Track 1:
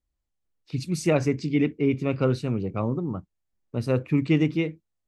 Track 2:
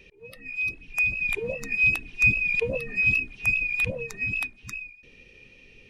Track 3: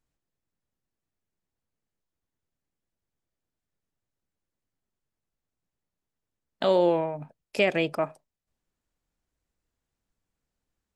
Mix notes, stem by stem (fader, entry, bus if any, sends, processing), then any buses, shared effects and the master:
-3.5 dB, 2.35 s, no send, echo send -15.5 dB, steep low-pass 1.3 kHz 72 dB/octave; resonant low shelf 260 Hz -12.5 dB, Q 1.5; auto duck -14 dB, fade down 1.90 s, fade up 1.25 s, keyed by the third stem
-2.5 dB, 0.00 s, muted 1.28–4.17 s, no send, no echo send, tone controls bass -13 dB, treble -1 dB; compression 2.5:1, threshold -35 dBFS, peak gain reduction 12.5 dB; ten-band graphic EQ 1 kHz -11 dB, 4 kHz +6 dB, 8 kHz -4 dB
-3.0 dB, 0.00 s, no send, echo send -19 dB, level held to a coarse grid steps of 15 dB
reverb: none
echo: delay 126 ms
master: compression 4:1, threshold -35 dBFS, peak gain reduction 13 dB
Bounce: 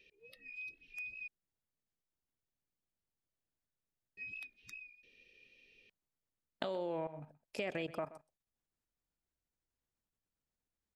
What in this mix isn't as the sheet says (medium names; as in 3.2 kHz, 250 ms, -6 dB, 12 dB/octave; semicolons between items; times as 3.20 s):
stem 1: muted; stem 2 -2.5 dB -> -12.5 dB